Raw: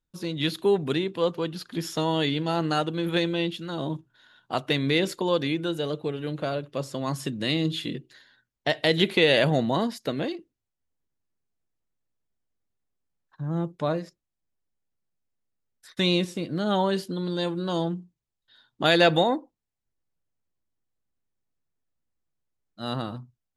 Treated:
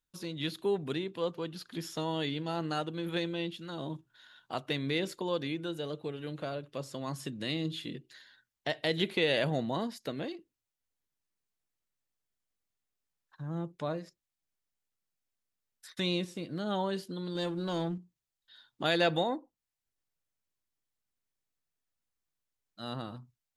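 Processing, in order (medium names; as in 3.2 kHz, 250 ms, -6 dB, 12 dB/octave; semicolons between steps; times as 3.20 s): 17.35–17.98 s: waveshaping leveller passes 1; tape noise reduction on one side only encoder only; trim -8.5 dB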